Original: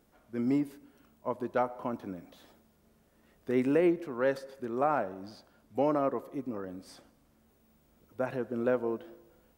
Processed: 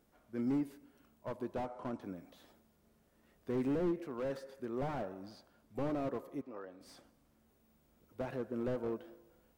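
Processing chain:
0:01.61–0:02.01: Butterworth low-pass 9,800 Hz
0:06.41–0:06.81: three-way crossover with the lows and the highs turned down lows −15 dB, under 390 Hz, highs −14 dB, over 4,800 Hz
slew-rate limiting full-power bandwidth 17 Hz
level −4.5 dB

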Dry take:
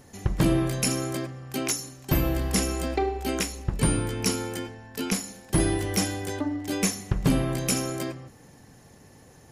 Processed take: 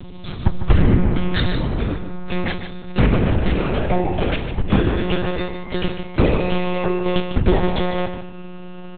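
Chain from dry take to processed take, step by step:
gliding playback speed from 53% → 159%
parametric band 79 Hz +4.5 dB 0.61 octaves
in parallel at −1 dB: downward compressor, threshold −37 dBFS, peak gain reduction 20 dB
on the sum: hum with harmonics 120 Hz, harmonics 5, −42 dBFS −8 dB per octave
one-pitch LPC vocoder at 8 kHz 180 Hz
single-tap delay 150 ms −10 dB
level +6 dB

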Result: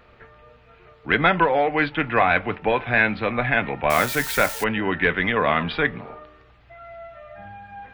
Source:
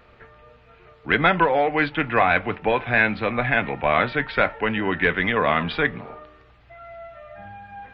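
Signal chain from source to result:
0:03.90–0:04.64: spike at every zero crossing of −19.5 dBFS

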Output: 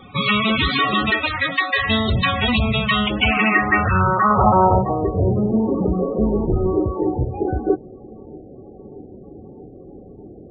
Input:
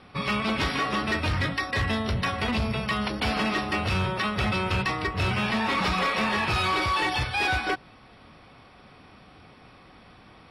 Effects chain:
0:06.16–0:06.77: sub-octave generator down 2 octaves, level −1 dB
in parallel at −3 dB: soft clipping −26 dBFS, distortion −13 dB
0:01.10–0:01.89: on the sum: three-way crossover with the lows and the highs turned down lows −15 dB, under 280 Hz, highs −21 dB, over 4,900 Hz
on a send: delay with a band-pass on its return 633 ms, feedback 83%, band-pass 550 Hz, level −24 dB
on the sum: low-pass filter sweep 3,900 Hz → 400 Hz, 0:02.90–0:05.45
spectral peaks only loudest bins 32
0:04.30–0:04.79: parametric band 850 Hz +6 dB 2.4 octaves
level +5 dB

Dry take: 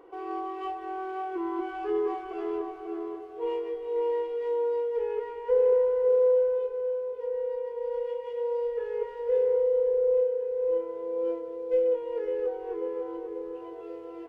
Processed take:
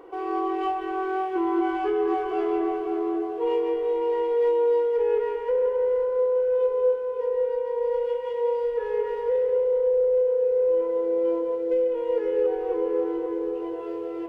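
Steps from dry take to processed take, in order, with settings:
brickwall limiter −24 dBFS, peak gain reduction 9.5 dB
convolution reverb RT60 1.3 s, pre-delay 163 ms, DRR 5 dB
level +6.5 dB

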